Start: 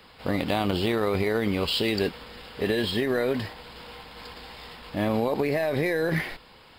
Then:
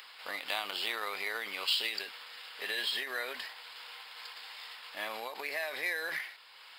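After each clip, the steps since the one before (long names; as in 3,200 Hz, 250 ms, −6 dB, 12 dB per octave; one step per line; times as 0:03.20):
high-pass filter 1,300 Hz 12 dB per octave
upward compression, threshold −45 dBFS
every ending faded ahead of time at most 100 dB per second
level −1 dB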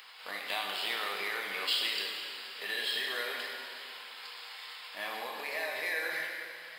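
dense smooth reverb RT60 2.4 s, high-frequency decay 0.95×, DRR −0.5 dB
level −2 dB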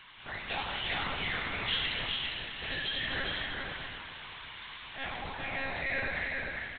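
one-pitch LPC vocoder at 8 kHz 270 Hz
single-tap delay 402 ms −3.5 dB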